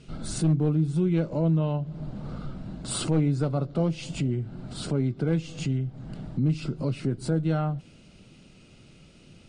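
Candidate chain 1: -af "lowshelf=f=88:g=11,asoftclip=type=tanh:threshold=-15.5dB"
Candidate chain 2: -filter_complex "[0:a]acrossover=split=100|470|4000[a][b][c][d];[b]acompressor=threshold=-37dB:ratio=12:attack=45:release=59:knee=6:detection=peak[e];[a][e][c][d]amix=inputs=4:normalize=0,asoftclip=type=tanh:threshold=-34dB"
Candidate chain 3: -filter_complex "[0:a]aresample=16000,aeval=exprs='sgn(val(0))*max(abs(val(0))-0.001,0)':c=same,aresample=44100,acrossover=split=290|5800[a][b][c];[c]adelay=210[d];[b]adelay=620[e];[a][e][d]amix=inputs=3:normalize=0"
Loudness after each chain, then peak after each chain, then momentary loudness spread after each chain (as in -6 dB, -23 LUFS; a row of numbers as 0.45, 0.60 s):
-27.0, -38.5, -29.0 LUFS; -16.0, -34.0, -16.0 dBFS; 11, 16, 10 LU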